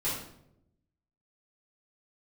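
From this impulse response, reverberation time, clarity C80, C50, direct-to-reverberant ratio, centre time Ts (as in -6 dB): 0.80 s, 6.5 dB, 2.0 dB, -11.5 dB, 48 ms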